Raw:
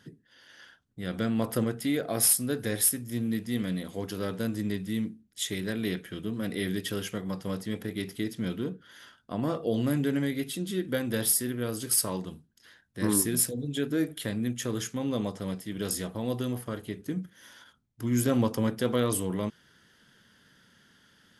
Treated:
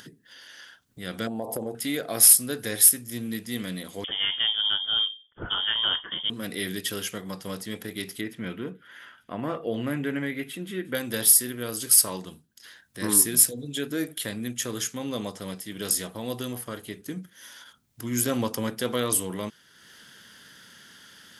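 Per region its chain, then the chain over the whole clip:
1.27–1.75 s: FFT filter 170 Hz 0 dB, 850 Hz +13 dB, 1.4 kHz -22 dB, 8.4 kHz -4 dB + compression 12:1, threshold -25 dBFS
4.04–6.30 s: treble shelf 2.4 kHz +11.5 dB + frequency inversion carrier 3.4 kHz
8.21–10.95 s: resonant high shelf 3.3 kHz -12 dB, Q 1.5 + feedback echo behind a high-pass 179 ms, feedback 78%, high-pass 5 kHz, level -19.5 dB
whole clip: tilt EQ +2 dB/octave; upward compressor, threshold -43 dBFS; trim +1.5 dB

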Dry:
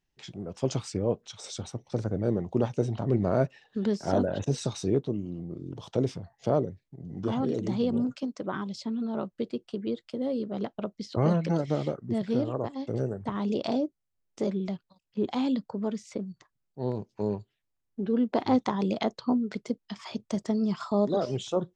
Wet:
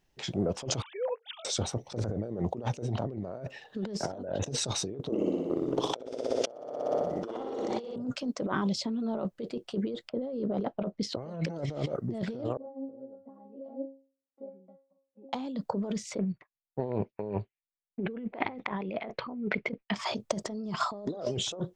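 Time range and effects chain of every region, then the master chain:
0.82–1.45 s: formants replaced by sine waves + high-pass 690 Hz 24 dB/octave
5.09–7.96 s: high-pass 410 Hz + transient shaper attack +10 dB, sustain +3 dB + flutter echo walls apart 10.3 m, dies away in 1.2 s
10.09–11.03 s: level-controlled noise filter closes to 970 Hz, open at -26 dBFS + treble shelf 2.9 kHz -8 dB
12.57–15.33 s: compression 1.5:1, threshold -51 dBFS + Chebyshev band-pass 170–650 Hz + inharmonic resonator 270 Hz, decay 0.39 s, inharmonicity 0.002
16.19–19.94 s: expander -49 dBFS + resonant low-pass 2.3 kHz, resonance Q 4.3
whole clip: peaking EQ 580 Hz +6 dB 1.2 oct; compressor with a negative ratio -34 dBFS, ratio -1

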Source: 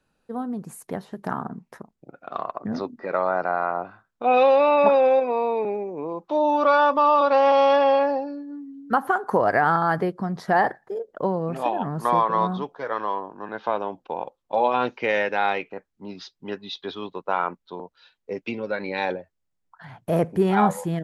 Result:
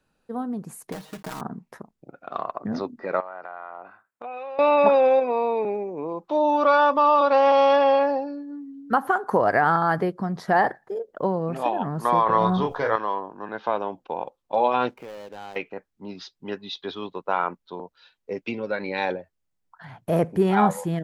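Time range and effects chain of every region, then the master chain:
0.92–1.41 s: block-companded coder 3-bit + comb 6.4 ms, depth 67% + compression, threshold -30 dBFS
3.20–4.59 s: high-pass 680 Hz 6 dB/octave + high-order bell 4.4 kHz -8.5 dB 1.3 oct + compression, threshold -33 dBFS
12.26–12.96 s: resonant low shelf 130 Hz +9.5 dB, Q 1.5 + doubling 27 ms -4.5 dB + level flattener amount 50%
14.89–15.56 s: median filter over 25 samples + compression 3:1, threshold -40 dBFS
whole clip: none

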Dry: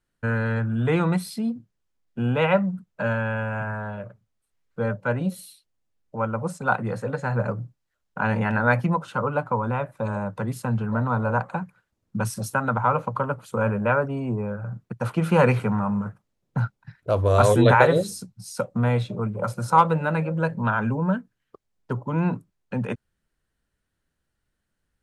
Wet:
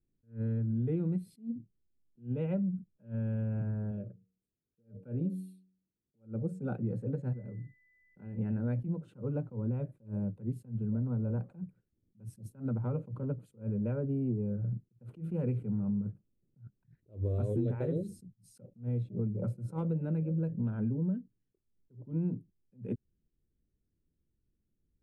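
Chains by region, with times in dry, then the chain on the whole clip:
3.91–6.79 s: comb of notches 1 kHz + de-hum 93.26 Hz, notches 5
7.32–8.37 s: doubling 21 ms -13.5 dB + compression, threshold -37 dBFS + whistle 2 kHz -43 dBFS
whole clip: FFT filter 370 Hz 0 dB, 1 kHz -28 dB, 2.5 kHz -22 dB, 5.8 kHz -28 dB, 8.3 kHz -21 dB; compression 6:1, threshold -29 dBFS; attacks held to a fixed rise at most 230 dB/s

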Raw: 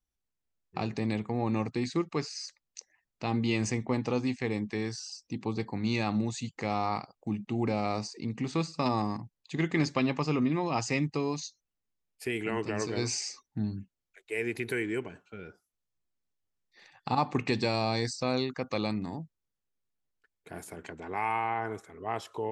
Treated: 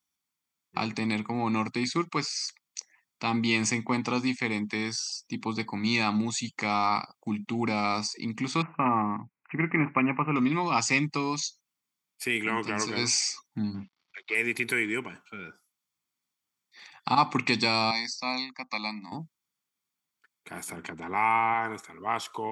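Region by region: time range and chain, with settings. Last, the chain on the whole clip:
8.62–10.36 s: Gaussian low-pass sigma 2.3 samples + careless resampling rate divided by 8×, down none, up filtered
13.74–14.35 s: companding laws mixed up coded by mu + steep low-pass 5.1 kHz
17.91–19.12 s: high-pass 210 Hz 24 dB/octave + static phaser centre 2.1 kHz, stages 8 + upward expansion, over -55 dBFS
20.69–21.54 s: tilt EQ -1.5 dB/octave + upward compressor, threshold -39 dBFS
whole clip: high-pass 240 Hz 12 dB/octave; peaking EQ 450 Hz -8.5 dB 1.5 oct; comb 0.9 ms, depth 34%; trim +8 dB

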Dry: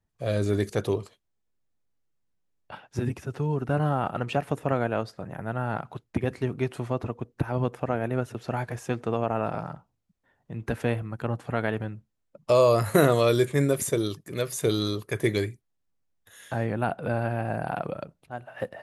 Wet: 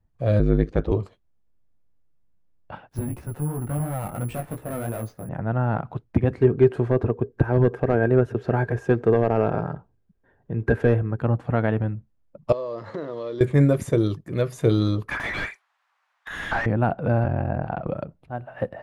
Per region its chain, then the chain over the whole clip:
0.39–0.92 s: low-pass 3.7 kHz + ring modulator 51 Hz
2.89–5.29 s: valve stage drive 27 dB, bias 0.4 + chorus 2.9 Hz, delay 16 ms, depth 4.2 ms + careless resampling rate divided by 4×, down none, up zero stuff
6.39–11.20 s: hard clipper -17.5 dBFS + small resonant body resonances 410/1600 Hz, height 15 dB, ringing for 60 ms
12.52–13.41 s: block-companded coder 5-bit + compression 16:1, threshold -27 dBFS + cabinet simulation 310–5100 Hz, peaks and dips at 720 Hz -8 dB, 1.4 kHz -7 dB, 2.5 kHz -10 dB
15.08–16.66 s: inverse Chebyshev high-pass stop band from 280 Hz, stop band 60 dB + overdrive pedal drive 36 dB, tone 1.5 kHz, clips at -16.5 dBFS
17.24–17.87 s: Chebyshev low-pass 6.6 kHz, order 3 + ring modulator 22 Hz
whole clip: low-pass 1.1 kHz 6 dB/octave; bass shelf 98 Hz +8.5 dB; band-stop 410 Hz, Q 12; trim +5.5 dB

